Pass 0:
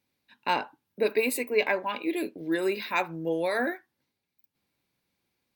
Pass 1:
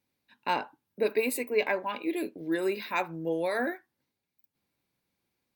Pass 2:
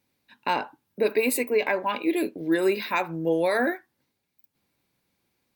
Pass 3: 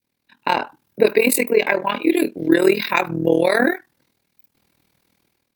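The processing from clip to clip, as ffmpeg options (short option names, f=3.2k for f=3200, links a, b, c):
-af "equalizer=f=3.4k:w=0.63:g=-2.5,volume=-1.5dB"
-af "alimiter=limit=-19.5dB:level=0:latency=1:release=114,volume=6.5dB"
-af "tremolo=f=40:d=0.857,adynamicequalizer=threshold=0.01:dfrequency=820:dqfactor=0.72:tfrequency=820:tqfactor=0.72:attack=5:release=100:ratio=0.375:range=2.5:mode=cutabove:tftype=bell,dynaudnorm=f=170:g=5:m=12dB,volume=1.5dB"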